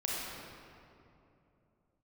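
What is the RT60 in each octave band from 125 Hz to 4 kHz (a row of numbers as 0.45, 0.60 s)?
3.8, 3.5, 3.1, 2.6, 2.1, 1.5 s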